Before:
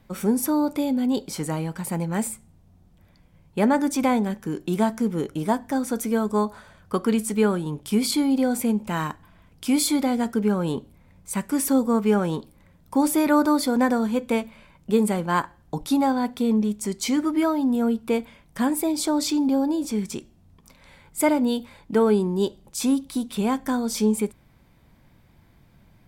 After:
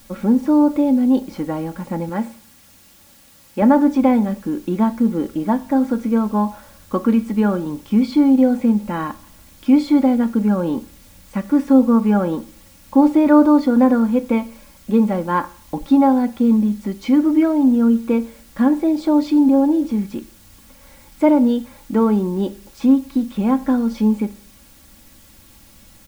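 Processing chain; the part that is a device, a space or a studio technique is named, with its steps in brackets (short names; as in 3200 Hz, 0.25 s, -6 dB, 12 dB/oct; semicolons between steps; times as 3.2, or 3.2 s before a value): 2.09–3.62 HPF 210 Hz 6 dB/oct; cassette deck with a dirty head (tape spacing loss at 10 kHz 36 dB; wow and flutter 11 cents; white noise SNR 31 dB); comb 3.6 ms, depth 64%; Schroeder reverb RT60 0.51 s, combs from 27 ms, DRR 16.5 dB; gain +5 dB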